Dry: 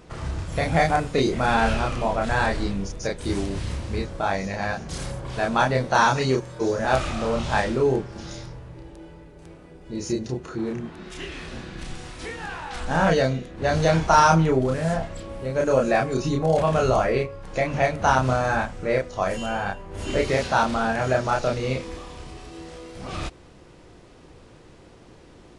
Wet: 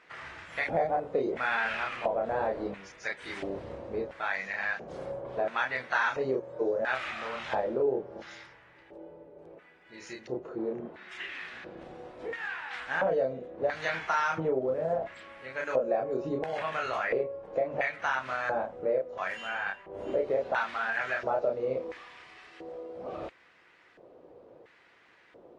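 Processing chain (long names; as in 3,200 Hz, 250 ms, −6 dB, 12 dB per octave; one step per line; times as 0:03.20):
auto-filter band-pass square 0.73 Hz 540–1,900 Hz
downward compressor 2.5 to 1, threshold −30 dBFS, peak gain reduction 9.5 dB
level +3 dB
AAC 32 kbit/s 48,000 Hz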